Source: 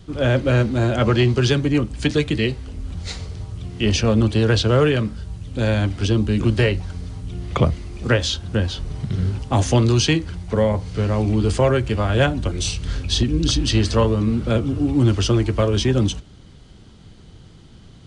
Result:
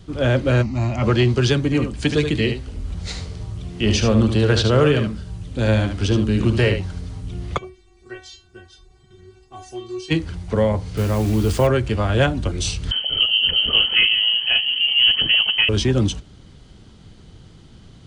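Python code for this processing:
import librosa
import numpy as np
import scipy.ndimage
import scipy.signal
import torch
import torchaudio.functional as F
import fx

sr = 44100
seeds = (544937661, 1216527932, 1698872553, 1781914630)

y = fx.fixed_phaser(x, sr, hz=2300.0, stages=8, at=(0.61, 1.02), fade=0.02)
y = fx.echo_single(y, sr, ms=74, db=-7.5, at=(1.6, 7.0))
y = fx.stiff_resonator(y, sr, f0_hz=370.0, decay_s=0.33, stiffness=0.002, at=(7.57, 10.1), fade=0.02)
y = fx.quant_dither(y, sr, seeds[0], bits=6, dither='none', at=(10.97, 11.67))
y = fx.freq_invert(y, sr, carrier_hz=3100, at=(12.91, 15.69))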